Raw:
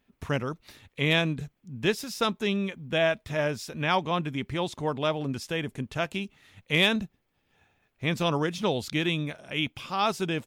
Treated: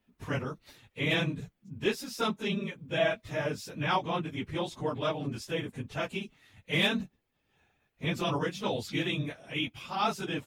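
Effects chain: phase randomisation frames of 50 ms; trim -4 dB

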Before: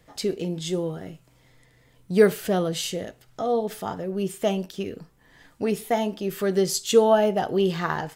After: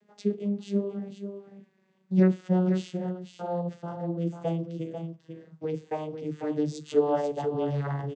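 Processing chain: vocoder on a note that slides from G#3, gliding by -7 st; delay 494 ms -8 dB; trim -4 dB

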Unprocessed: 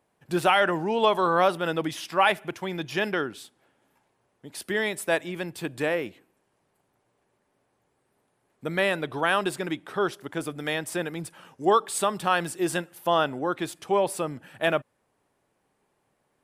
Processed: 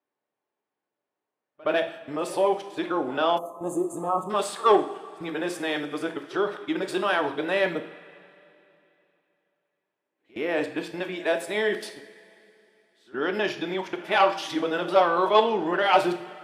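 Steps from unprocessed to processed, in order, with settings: reverse the whole clip; in parallel at -2 dB: level held to a coarse grid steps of 19 dB; on the sum: saturation -8.5 dBFS, distortion -18 dB; high-pass 88 Hz; three-band isolator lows -16 dB, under 200 Hz, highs -14 dB, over 5.6 kHz; gate -41 dBFS, range -18 dB; two-slope reverb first 0.55 s, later 3 s, from -18 dB, DRR 5.5 dB; dynamic bell 1.8 kHz, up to -3 dB, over -34 dBFS, Q 0.76; pre-echo 69 ms -23.5 dB; time-frequency box 3.39–4.30 s, 1.3–6.2 kHz -27 dB

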